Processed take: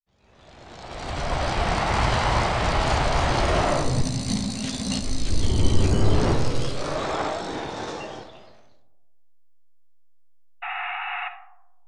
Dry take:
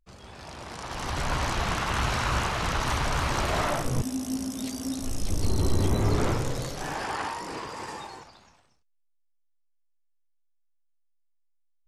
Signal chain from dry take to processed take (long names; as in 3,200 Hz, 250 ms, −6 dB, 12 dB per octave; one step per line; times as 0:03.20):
fade in at the beginning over 1.83 s
sound drawn into the spectrogram noise, 0:10.62–0:11.29, 700–3,900 Hz −35 dBFS
comb and all-pass reverb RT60 1.2 s, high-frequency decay 0.3×, pre-delay 0 ms, DRR 7.5 dB
formants moved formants −5 semitones
level +4.5 dB